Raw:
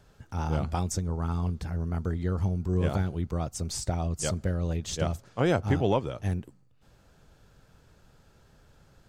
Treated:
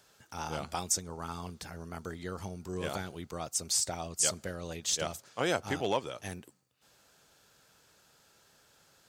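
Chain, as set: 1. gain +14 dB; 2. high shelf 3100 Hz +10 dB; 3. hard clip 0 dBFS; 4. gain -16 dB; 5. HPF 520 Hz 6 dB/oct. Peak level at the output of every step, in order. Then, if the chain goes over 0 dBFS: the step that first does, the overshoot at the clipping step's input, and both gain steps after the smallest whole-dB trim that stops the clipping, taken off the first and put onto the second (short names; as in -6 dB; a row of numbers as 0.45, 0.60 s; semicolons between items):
+1.5, +3.0, 0.0, -16.0, -15.5 dBFS; step 1, 3.0 dB; step 1 +11 dB, step 4 -13 dB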